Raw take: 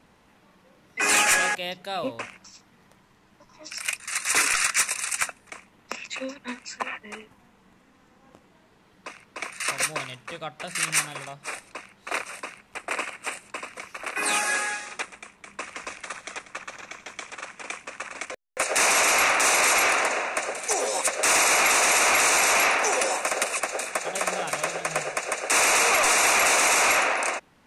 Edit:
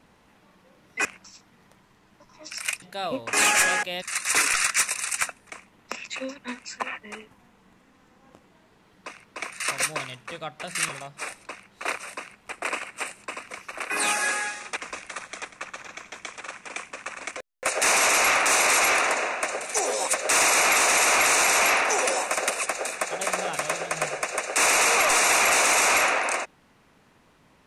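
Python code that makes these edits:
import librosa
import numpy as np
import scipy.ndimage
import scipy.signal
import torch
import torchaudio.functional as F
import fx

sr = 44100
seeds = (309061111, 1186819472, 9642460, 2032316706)

y = fx.edit(x, sr, fx.swap(start_s=1.05, length_s=0.69, other_s=2.25, other_length_s=1.77),
    fx.cut(start_s=10.89, length_s=0.26),
    fx.cut(start_s=15.03, length_s=0.68), tone=tone)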